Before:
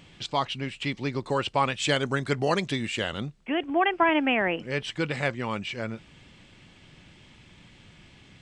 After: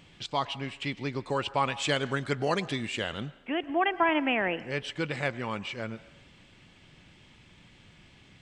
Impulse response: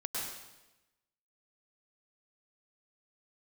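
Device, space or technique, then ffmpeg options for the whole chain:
filtered reverb send: -filter_complex "[0:a]asplit=2[a][b];[b]highpass=360,lowpass=4.9k[c];[1:a]atrim=start_sample=2205[d];[c][d]afir=irnorm=-1:irlink=0,volume=-18dB[e];[a][e]amix=inputs=2:normalize=0,volume=-3.5dB"

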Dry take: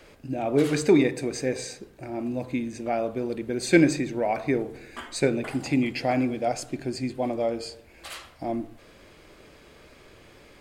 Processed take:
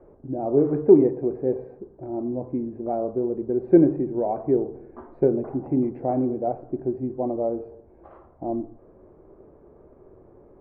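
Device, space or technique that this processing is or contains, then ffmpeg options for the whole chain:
under water: -af "lowpass=f=950:w=0.5412,lowpass=f=950:w=1.3066,equalizer=f=380:t=o:w=0.29:g=8"

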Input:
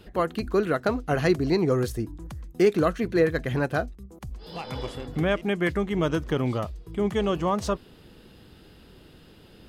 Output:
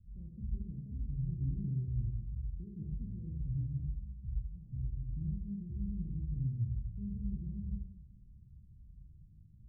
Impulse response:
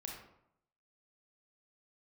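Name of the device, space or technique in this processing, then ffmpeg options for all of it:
club heard from the street: -filter_complex "[0:a]alimiter=limit=-17.5dB:level=0:latency=1,lowpass=f=140:w=0.5412,lowpass=f=140:w=1.3066[a];[1:a]atrim=start_sample=2205[b];[a][b]afir=irnorm=-1:irlink=0"

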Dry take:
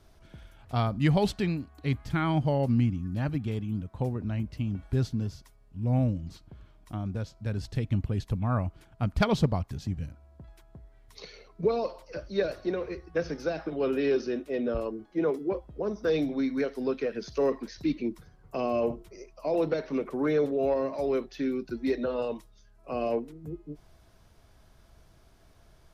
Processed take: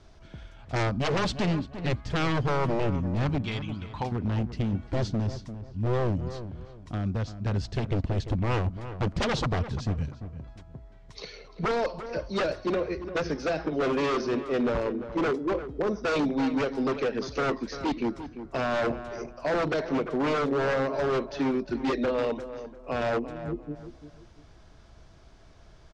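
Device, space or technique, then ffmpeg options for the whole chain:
synthesiser wavefolder: -filter_complex "[0:a]asettb=1/sr,asplit=3[a][b][c];[a]atrim=end=3.454[d];[b]atrim=start=3.45:end=4.12,asetpts=PTS-STARTPTS,afade=t=in:d=0.004:c=qsin,afade=t=out:st=0.666:d=0.004:c=qsin,equalizer=f=125:t=o:w=1:g=-9,equalizer=f=250:t=o:w=1:g=-6,equalizer=f=500:t=o:w=1:g=-8,equalizer=f=1k:t=o:w=1:g=9,equalizer=f=2k:t=o:w=1:g=5,equalizer=f=4k:t=o:w=1:g=9[e];[c]atrim=start=4.116[f];[d][e]acrossfade=d=0.004:c1=hsin:c2=qsin[g];[g][f]acrossfade=d=0.004:c1=qsin:c2=hsin,aeval=exprs='0.0531*(abs(mod(val(0)/0.0531+3,4)-2)-1)':c=same,lowpass=f=7.1k:w=0.5412,lowpass=f=7.1k:w=1.3066,asplit=2[h][i];[i]adelay=345,lowpass=f=1.8k:p=1,volume=-11dB,asplit=2[j][k];[k]adelay=345,lowpass=f=1.8k:p=1,volume=0.3,asplit=2[l][m];[m]adelay=345,lowpass=f=1.8k:p=1,volume=0.3[n];[h][j][l][n]amix=inputs=4:normalize=0,volume=4.5dB"

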